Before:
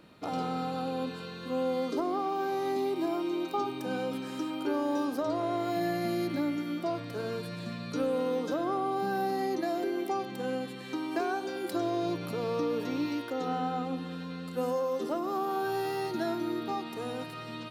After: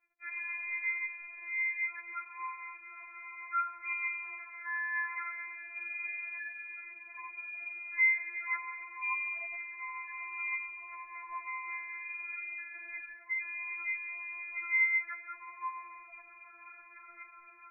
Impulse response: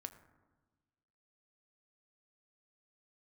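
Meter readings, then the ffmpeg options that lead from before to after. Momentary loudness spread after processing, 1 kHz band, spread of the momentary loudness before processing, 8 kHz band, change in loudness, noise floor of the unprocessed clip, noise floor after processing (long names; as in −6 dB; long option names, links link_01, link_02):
15 LU, −9.0 dB, 6 LU, below −30 dB, −3.0 dB, −41 dBFS, −55 dBFS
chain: -af "aeval=exprs='sgn(val(0))*max(abs(val(0))-0.00299,0)':channel_layout=same,lowpass=frequency=2200:width_type=q:width=0.5098,lowpass=frequency=2200:width_type=q:width=0.6013,lowpass=frequency=2200:width_type=q:width=0.9,lowpass=frequency=2200:width_type=q:width=2.563,afreqshift=-2600,afftfilt=real='re*4*eq(mod(b,16),0)':imag='im*4*eq(mod(b,16),0)':win_size=2048:overlap=0.75,volume=-2dB"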